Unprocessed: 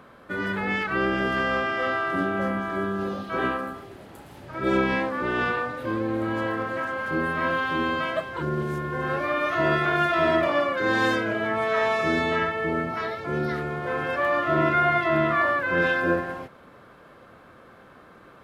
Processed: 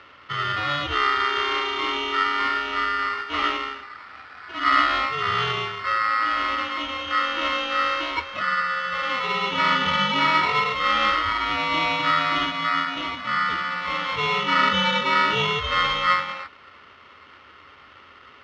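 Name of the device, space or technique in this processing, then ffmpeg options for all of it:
ring modulator pedal into a guitar cabinet: -af "aeval=exprs='val(0)*sgn(sin(2*PI*1600*n/s))':channel_layout=same,highpass=78,equalizer=frequency=80:width_type=q:width=4:gain=10,equalizer=frequency=170:width_type=q:width=4:gain=-6,equalizer=frequency=1300:width_type=q:width=4:gain=9,lowpass=frequency=4000:width=0.5412,lowpass=frequency=4000:width=1.3066"

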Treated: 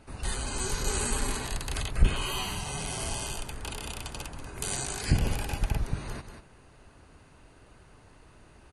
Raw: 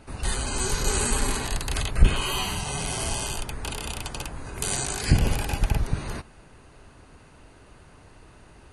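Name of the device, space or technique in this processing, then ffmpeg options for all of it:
ducked delay: -filter_complex "[0:a]asplit=3[link_01][link_02][link_03];[link_02]adelay=187,volume=-8dB[link_04];[link_03]apad=whole_len=392886[link_05];[link_04][link_05]sidechaincompress=threshold=-33dB:ratio=8:attack=16:release=289[link_06];[link_01][link_06]amix=inputs=2:normalize=0,volume=-5dB"

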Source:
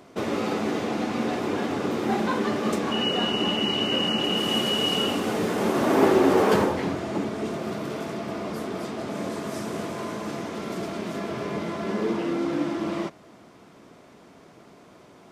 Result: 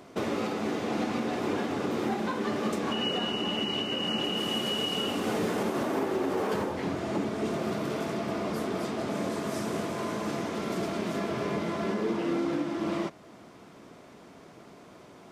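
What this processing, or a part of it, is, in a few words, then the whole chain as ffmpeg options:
stacked limiters: -af "alimiter=limit=-14dB:level=0:latency=1:release=475,alimiter=limit=-20dB:level=0:latency=1:release=431"

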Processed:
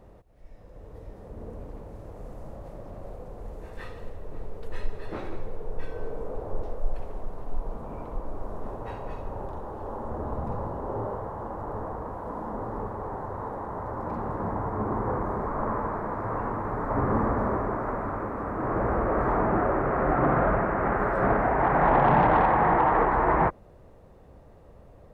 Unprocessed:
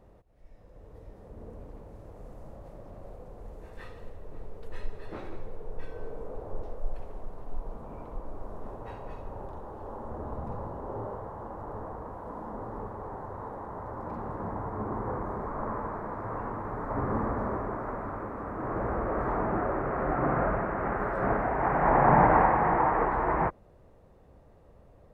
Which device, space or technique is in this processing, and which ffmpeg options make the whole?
soft clipper into limiter: -af "asoftclip=type=tanh:threshold=-12dB,alimiter=limit=-17.5dB:level=0:latency=1:release=126,volume=5dB"

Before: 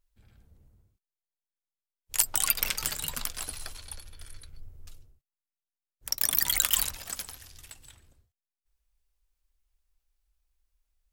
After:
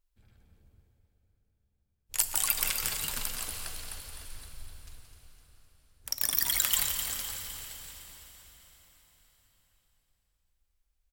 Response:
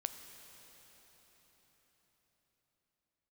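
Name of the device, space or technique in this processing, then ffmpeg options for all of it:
cave: -filter_complex "[0:a]aecho=1:1:173:0.355,aecho=1:1:255|510|765|1020|1275|1530:0.316|0.171|0.0922|0.0498|0.0269|0.0145[link_01];[1:a]atrim=start_sample=2205[link_02];[link_01][link_02]afir=irnorm=-1:irlink=0,volume=-1.5dB"

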